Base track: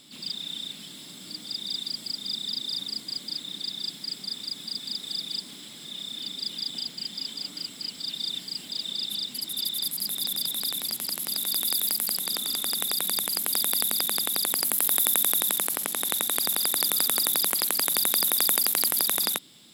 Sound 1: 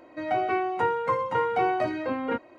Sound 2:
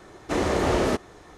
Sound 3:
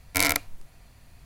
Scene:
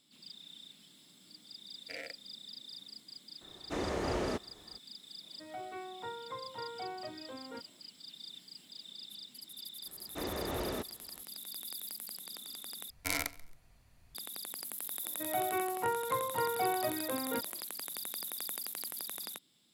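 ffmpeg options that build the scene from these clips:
-filter_complex "[3:a]asplit=2[s0][s1];[2:a]asplit=2[s2][s3];[1:a]asplit=2[s4][s5];[0:a]volume=0.141[s6];[s0]asplit=3[s7][s8][s9];[s7]bandpass=f=530:t=q:w=8,volume=1[s10];[s8]bandpass=f=1840:t=q:w=8,volume=0.501[s11];[s9]bandpass=f=2480:t=q:w=8,volume=0.355[s12];[s10][s11][s12]amix=inputs=3:normalize=0[s13];[s1]aecho=1:1:136|272:0.0841|0.0236[s14];[s6]asplit=2[s15][s16];[s15]atrim=end=12.904[s17];[s14]atrim=end=1.25,asetpts=PTS-STARTPTS,volume=0.266[s18];[s16]atrim=start=14.146[s19];[s13]atrim=end=1.25,asetpts=PTS-STARTPTS,volume=0.473,afade=t=in:d=0.004:c=hsin,afade=t=out:st=1.246:d=0.004:c=hsin,adelay=1740[s20];[s2]atrim=end=1.37,asetpts=PTS-STARTPTS,volume=0.266,afade=t=in:d=0.004:c=hsin,afade=t=out:st=1.366:d=0.004:c=hsin,adelay=150381S[s21];[s4]atrim=end=2.58,asetpts=PTS-STARTPTS,volume=0.126,afade=t=in:d=0.004:c=hsin,afade=t=out:st=2.576:d=0.004:c=hsin,adelay=5230[s22];[s3]atrim=end=1.37,asetpts=PTS-STARTPTS,volume=0.188,afade=t=in:d=0.004:c=hsin,afade=t=out:st=1.366:d=0.004:c=hsin,adelay=434826S[s23];[s5]atrim=end=2.58,asetpts=PTS-STARTPTS,volume=0.398,afade=t=in:d=0.004:c=hsin,afade=t=out:st=2.576:d=0.004:c=hsin,adelay=15030[s24];[s17][s18]acrossfade=d=0.004:c1=hsin:c2=hsin[s25];[s25][s19]acrossfade=d=0.004:c1=hsin:c2=hsin[s26];[s26][s20][s21][s22][s23][s24]amix=inputs=6:normalize=0"

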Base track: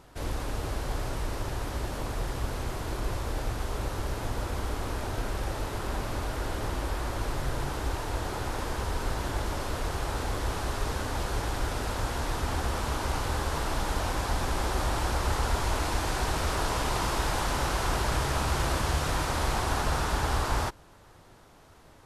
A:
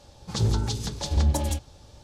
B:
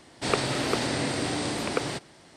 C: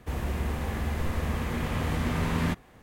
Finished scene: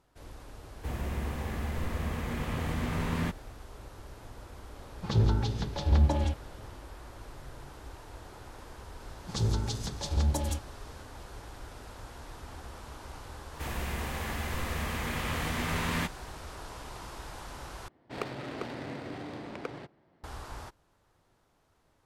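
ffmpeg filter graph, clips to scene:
-filter_complex "[3:a]asplit=2[s0][s1];[1:a]asplit=2[s2][s3];[0:a]volume=0.178[s4];[s2]lowpass=3100[s5];[s1]tiltshelf=f=910:g=-5[s6];[2:a]adynamicsmooth=sensitivity=2.5:basefreq=1500[s7];[s4]asplit=2[s8][s9];[s8]atrim=end=17.884[s10];[s7]atrim=end=2.36,asetpts=PTS-STARTPTS,volume=0.299[s11];[s9]atrim=start=20.236[s12];[s0]atrim=end=2.82,asetpts=PTS-STARTPTS,volume=0.631,afade=t=in:d=0.004:c=hsin,afade=t=out:st=2.816:d=0.004:c=hsin,adelay=770[s13];[s5]atrim=end=2.03,asetpts=PTS-STARTPTS,volume=0.891,afade=t=in:d=0.004:c=hsin,afade=t=out:st=2.026:d=0.004:c=hsin,adelay=4750[s14];[s3]atrim=end=2.03,asetpts=PTS-STARTPTS,volume=0.562,afade=t=in:d=0.004:c=hsin,afade=t=out:st=2.026:d=0.004:c=hsin,adelay=9000[s15];[s6]atrim=end=2.82,asetpts=PTS-STARTPTS,volume=0.841,afade=t=in:d=0.004:c=hsin,afade=t=out:st=2.816:d=0.004:c=hsin,adelay=13530[s16];[s10][s11]acrossfade=d=0.004:c1=hsin:c2=hsin[s17];[s17][s12]acrossfade=d=0.004:c1=hsin:c2=hsin[s18];[s18][s13][s14][s15][s16]amix=inputs=5:normalize=0"

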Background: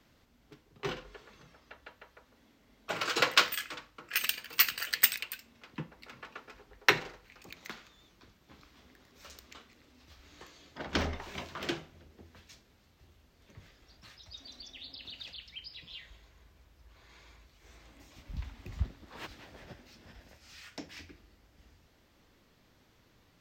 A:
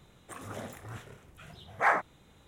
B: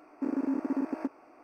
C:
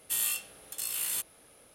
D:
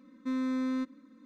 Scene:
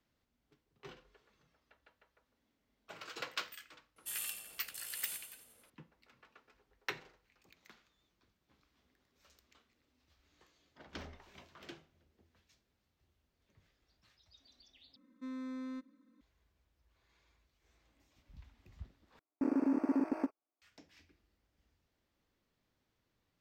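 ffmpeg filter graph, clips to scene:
-filter_complex "[0:a]volume=0.158[s0];[3:a]aecho=1:1:90|180|270|360|450|540|630:0.398|0.227|0.129|0.0737|0.042|0.024|0.0137[s1];[2:a]agate=range=0.01:threshold=0.00708:ratio=16:release=100:detection=peak[s2];[s0]asplit=3[s3][s4][s5];[s3]atrim=end=14.964[s6];[4:a]atrim=end=1.25,asetpts=PTS-STARTPTS,volume=0.266[s7];[s4]atrim=start=16.206:end=19.194[s8];[s2]atrim=end=1.43,asetpts=PTS-STARTPTS,volume=0.841[s9];[s5]atrim=start=20.616[s10];[s1]atrim=end=1.74,asetpts=PTS-STARTPTS,volume=0.251,afade=t=in:d=0.004:c=hsin,afade=t=out:st=1.736:d=0.004:c=hsin,adelay=3960[s11];[s6][s7]acrossfade=d=0.004:c1=hsin:c2=hsin[s12];[s12][s8]acrossfade=d=0.004:c1=hsin:c2=hsin[s13];[s13][s9]acrossfade=d=0.004:c1=hsin:c2=hsin[s14];[s14][s10]acrossfade=d=0.004:c1=hsin:c2=hsin[s15];[s15][s11]amix=inputs=2:normalize=0"

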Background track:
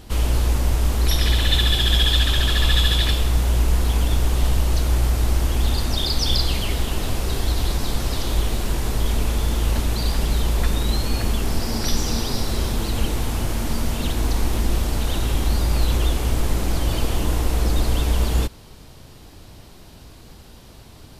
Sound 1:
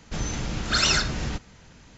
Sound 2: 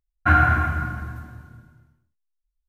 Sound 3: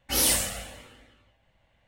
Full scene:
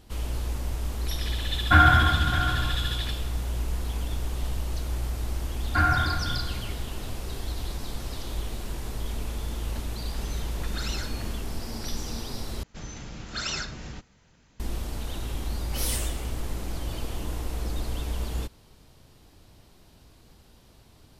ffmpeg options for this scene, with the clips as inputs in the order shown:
-filter_complex "[2:a]asplit=2[s0][s1];[1:a]asplit=2[s2][s3];[0:a]volume=0.282[s4];[s0]aecho=1:1:610:0.266[s5];[s2]alimiter=limit=0.211:level=0:latency=1:release=71[s6];[s4]asplit=2[s7][s8];[s7]atrim=end=12.634[s9];[s3]atrim=end=1.97,asetpts=PTS-STARTPTS,volume=0.316[s10];[s8]atrim=start=14.596[s11];[s5]atrim=end=2.68,asetpts=PTS-STARTPTS,afade=t=in:d=0.004:c=hsin,afade=t=out:st=2.676:d=0.004:c=hsin,adelay=1450[s12];[s1]atrim=end=2.68,asetpts=PTS-STARTPTS,volume=0.501,afade=t=in:d=0.004:c=hsin,afade=t=out:st=2.676:d=0.004:c=hsin,adelay=242109S[s13];[s6]atrim=end=1.97,asetpts=PTS-STARTPTS,volume=0.237,afade=t=in:d=0.004:c=hsin,afade=t=out:st=1.966:d=0.004:c=hsin,adelay=10040[s14];[3:a]atrim=end=1.87,asetpts=PTS-STARTPTS,volume=0.376,afade=t=in:d=0.004:c=hsin,afade=t=out:st=1.866:d=0.004:c=hsin,adelay=15630[s15];[s9][s10]acrossfade=d=0.004:c1=hsin:c2=hsin[s16];[s16][s11]acrossfade=d=0.004:c1=hsin:c2=hsin[s17];[s17][s12][s13][s14][s15]amix=inputs=5:normalize=0"

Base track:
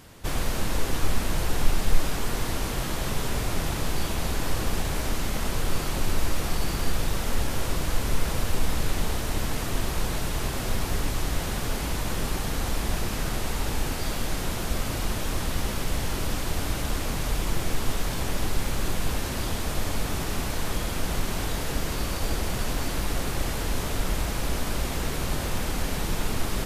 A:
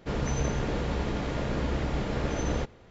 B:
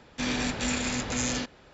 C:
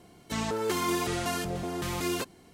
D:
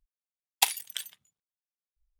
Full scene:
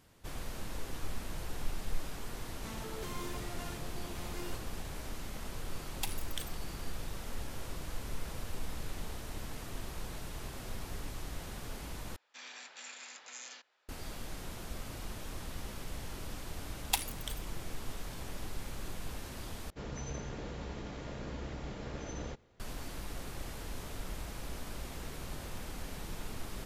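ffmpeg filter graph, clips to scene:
-filter_complex "[4:a]asplit=2[s0][s1];[0:a]volume=0.188[s2];[s0]alimiter=limit=0.224:level=0:latency=1:release=312[s3];[2:a]highpass=890[s4];[1:a]highshelf=f=6300:g=9[s5];[s2]asplit=3[s6][s7][s8];[s6]atrim=end=12.164[s9];[s4]atrim=end=1.73,asetpts=PTS-STARTPTS,volume=0.158[s10];[s7]atrim=start=13.886:end=19.704[s11];[s5]atrim=end=2.9,asetpts=PTS-STARTPTS,volume=0.237[s12];[s8]atrim=start=22.596[s13];[3:a]atrim=end=2.53,asetpts=PTS-STARTPTS,volume=0.168,afade=t=in:d=0.004:c=hsin,afade=t=out:st=2.526:d=0.004:c=hsin,adelay=2330[s14];[s3]atrim=end=2.19,asetpts=PTS-STARTPTS,volume=0.501,afade=t=in:d=0.004:c=hsin,afade=t=out:st=2.186:d=0.004:c=hsin,adelay=238581S[s15];[s1]atrim=end=2.19,asetpts=PTS-STARTPTS,volume=0.422,afade=t=in:d=0.004:c=hsin,afade=t=out:st=2.186:d=0.004:c=hsin,adelay=16310[s16];[s9][s10]acrossfade=d=0.004:c1=hsin:c2=hsin[s17];[s17][s11]acrossfade=d=0.004:c1=hsin:c2=hsin[s18];[s18][s12]acrossfade=d=0.004:c1=hsin:c2=hsin[s19];[s19][s13]acrossfade=d=0.004:c1=hsin:c2=hsin[s20];[s20][s14][s15][s16]amix=inputs=4:normalize=0"

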